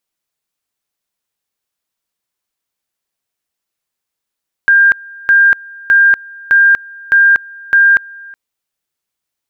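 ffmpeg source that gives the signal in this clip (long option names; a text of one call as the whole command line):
ffmpeg -f lavfi -i "aevalsrc='pow(10,(-4.5-25*gte(mod(t,0.61),0.24))/20)*sin(2*PI*1600*t)':duration=3.66:sample_rate=44100" out.wav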